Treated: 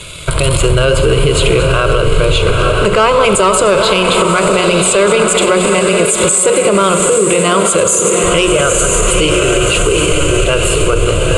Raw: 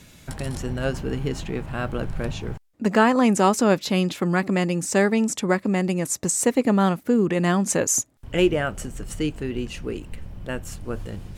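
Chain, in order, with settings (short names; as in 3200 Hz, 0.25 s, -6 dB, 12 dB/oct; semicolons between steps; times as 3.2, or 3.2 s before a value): reverse delay 0.125 s, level -12 dB; low shelf 390 Hz -4 dB; fixed phaser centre 1200 Hz, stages 8; sample leveller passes 1; steep low-pass 9800 Hz 48 dB/oct; high shelf 6000 Hz +9 dB; notches 60/120/180/240/300/360/420/480/540 Hz; diffused feedback echo 0.896 s, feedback 47%, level -7 dB; Schroeder reverb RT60 2.9 s, combs from 32 ms, DRR 12 dB; compressor, threshold -27 dBFS, peak gain reduction 11 dB; maximiser +25.5 dB; gain -1 dB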